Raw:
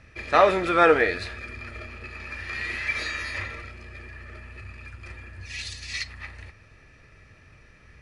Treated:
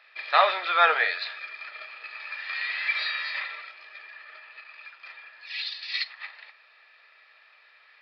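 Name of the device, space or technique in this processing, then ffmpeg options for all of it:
musical greeting card: -af "aresample=11025,aresample=44100,highpass=f=710:w=0.5412,highpass=f=710:w=1.3066,equalizer=f=3700:t=o:w=0.49:g=7"

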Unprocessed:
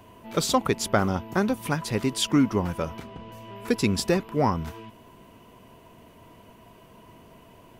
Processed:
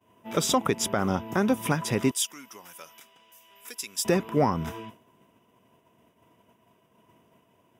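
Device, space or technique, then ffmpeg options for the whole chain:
PA system with an anti-feedback notch: -filter_complex "[0:a]agate=range=0.0224:threshold=0.01:ratio=3:detection=peak,highpass=110,asuperstop=centerf=4300:order=4:qfactor=5.5,alimiter=limit=0.168:level=0:latency=1:release=172,asettb=1/sr,asplit=3[s0][s1][s2];[s0]atrim=end=2.114[s3];[s1]atrim=start=2.11:end=4.05,asetpts=PTS-STARTPTS,afade=t=in:d=0.004:c=qsin,afade=t=out:st=1.936:d=0.004:c=qsin,aderivative[s4];[s2]atrim=start=4.046[s5];[s3][s4]acrossfade=d=0.004:c1=hsin:c2=qsin[s6];[s6][s5]acrossfade=d=0.004:c1=qsin:c2=hsin,volume=1.5"

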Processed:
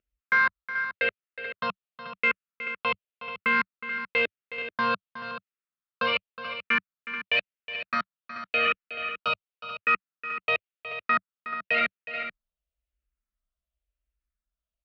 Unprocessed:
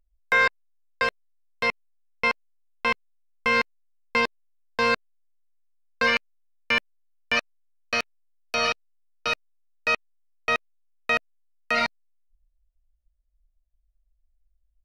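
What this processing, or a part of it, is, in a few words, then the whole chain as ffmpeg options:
barber-pole phaser into a guitar amplifier: -filter_complex "[0:a]lowpass=5000,asplit=2[s0][s1];[s1]afreqshift=-0.93[s2];[s0][s2]amix=inputs=2:normalize=1,asoftclip=type=tanh:threshold=0.106,highpass=93,equalizer=f=99:t=q:w=4:g=-7,equalizer=f=190:t=q:w=4:g=4,equalizer=f=290:t=q:w=4:g=-4,equalizer=f=840:t=q:w=4:g=-10,equalizer=f=1300:t=q:w=4:g=7,equalizer=f=2700:t=q:w=4:g=4,lowpass=f=3700:w=0.5412,lowpass=f=3700:w=1.3066,aecho=1:1:366|433:0.224|0.282,volume=1.26"

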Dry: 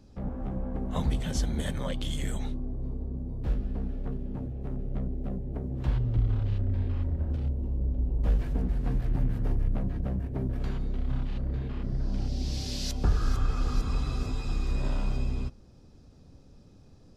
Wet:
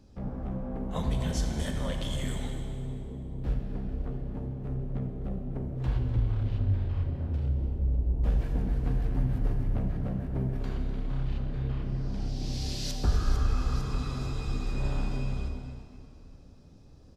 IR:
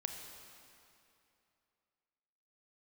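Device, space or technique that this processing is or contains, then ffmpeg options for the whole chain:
cave: -filter_complex "[0:a]aecho=1:1:250:0.224[s0];[1:a]atrim=start_sample=2205[s1];[s0][s1]afir=irnorm=-1:irlink=0"

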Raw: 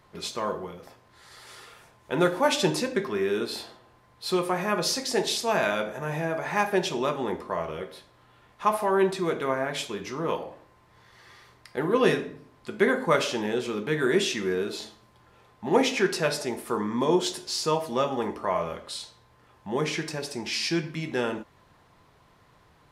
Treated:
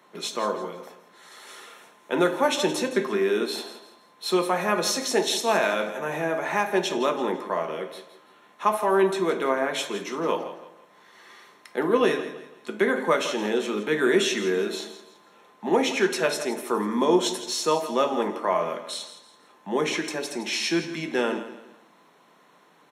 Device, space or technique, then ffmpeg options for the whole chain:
PA system with an anti-feedback notch: -af "highpass=f=160:w=0.5412,highpass=f=160:w=1.3066,asuperstop=centerf=4800:order=12:qfactor=8,alimiter=limit=0.237:level=0:latency=1:release=386,highpass=f=180:w=0.5412,highpass=f=180:w=1.3066,aecho=1:1:166|332|498:0.224|0.0784|0.0274,volume=1.41"

